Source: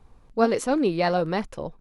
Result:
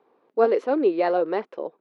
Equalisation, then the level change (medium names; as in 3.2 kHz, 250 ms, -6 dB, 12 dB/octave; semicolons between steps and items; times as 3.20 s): ladder high-pass 320 Hz, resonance 45%; distance through air 300 m; +8.0 dB